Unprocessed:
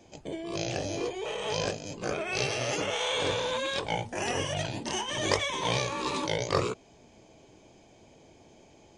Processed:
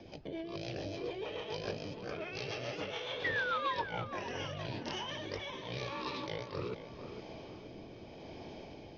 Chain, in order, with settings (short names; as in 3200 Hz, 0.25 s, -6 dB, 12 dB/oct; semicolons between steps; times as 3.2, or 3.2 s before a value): steep low-pass 5600 Hz 72 dB/oct; reverse; compressor 5:1, threshold -46 dBFS, peak gain reduction 22.5 dB; reverse; painted sound fall, 3.24–3.82, 900–2000 Hz -40 dBFS; rotary speaker horn 7 Hz, later 0.85 Hz, at 3.82; on a send: tape echo 0.464 s, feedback 49%, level -8.5 dB, low-pass 2100 Hz; on the sum: Doppler distortion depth 0.1 ms; gain +8.5 dB